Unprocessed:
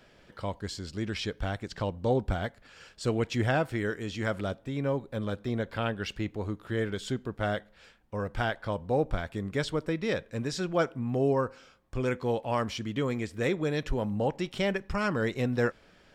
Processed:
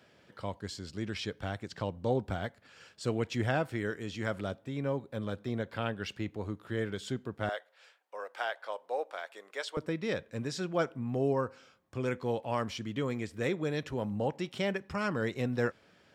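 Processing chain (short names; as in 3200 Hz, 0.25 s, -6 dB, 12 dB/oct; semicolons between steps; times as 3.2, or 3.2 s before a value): HPF 81 Hz 24 dB/oct, from 7.49 s 510 Hz, from 9.77 s 79 Hz; gain -3.5 dB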